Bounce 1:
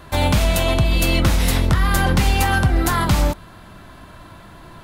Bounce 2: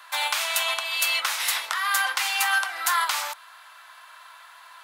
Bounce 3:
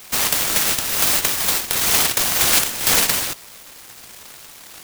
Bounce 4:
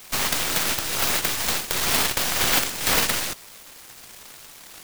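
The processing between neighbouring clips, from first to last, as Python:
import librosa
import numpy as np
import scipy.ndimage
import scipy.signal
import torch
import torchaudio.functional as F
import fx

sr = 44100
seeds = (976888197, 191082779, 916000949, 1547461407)

y1 = scipy.signal.sosfilt(scipy.signal.butter(4, 980.0, 'highpass', fs=sr, output='sos'), x)
y2 = fx.noise_mod_delay(y1, sr, seeds[0], noise_hz=3000.0, depth_ms=0.43)
y2 = y2 * 10.0 ** (7.0 / 20.0)
y3 = fx.tracing_dist(y2, sr, depth_ms=0.17)
y3 = y3 * 10.0 ** (-3.0 / 20.0)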